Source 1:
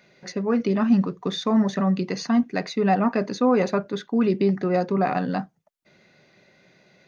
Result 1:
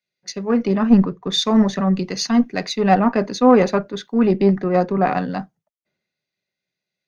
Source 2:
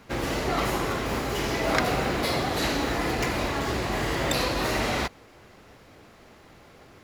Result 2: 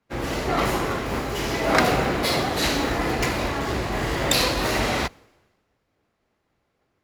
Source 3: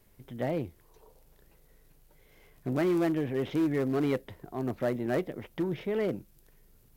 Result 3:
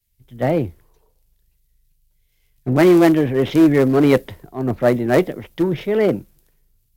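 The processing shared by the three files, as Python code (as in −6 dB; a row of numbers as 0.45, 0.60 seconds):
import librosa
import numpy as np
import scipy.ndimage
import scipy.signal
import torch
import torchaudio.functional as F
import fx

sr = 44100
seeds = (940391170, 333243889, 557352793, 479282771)

y = fx.diode_clip(x, sr, knee_db=-15.0)
y = fx.band_widen(y, sr, depth_pct=100)
y = y * 10.0 ** (-1.5 / 20.0) / np.max(np.abs(y))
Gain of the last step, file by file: +5.0, +4.0, +14.0 decibels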